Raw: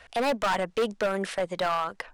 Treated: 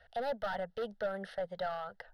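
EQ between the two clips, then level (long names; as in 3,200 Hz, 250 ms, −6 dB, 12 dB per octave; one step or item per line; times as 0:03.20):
high-shelf EQ 2,300 Hz −9 dB
notch filter 1,000 Hz, Q 28
phaser with its sweep stopped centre 1,600 Hz, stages 8
−6.5 dB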